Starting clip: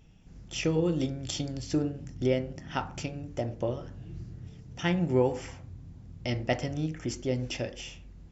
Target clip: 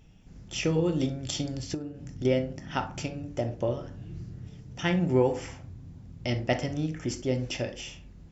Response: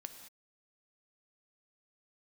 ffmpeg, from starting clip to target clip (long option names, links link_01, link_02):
-filter_complex "[1:a]atrim=start_sample=2205,atrim=end_sample=3087[link_01];[0:a][link_01]afir=irnorm=-1:irlink=0,asettb=1/sr,asplit=3[link_02][link_03][link_04];[link_02]atrim=end=1.744[link_05];[link_03]atrim=start=1.74:end=2.25,asetpts=PTS-STARTPTS,afade=type=in:duration=0.004:curve=qsin,afade=type=out:start_time=0.506:duration=0.004:curve=qsin,acompressor=threshold=-39dB:ratio=10[link_06];[link_04]atrim=start=2.246[link_07];[link_05][link_06]acrossfade=duration=0.004:curve1=hsin:curve2=qsin[link_08];[link_08][link_07]acrossfade=duration=0.004:curve1=qsin:curve2=hsin,volume=6.5dB"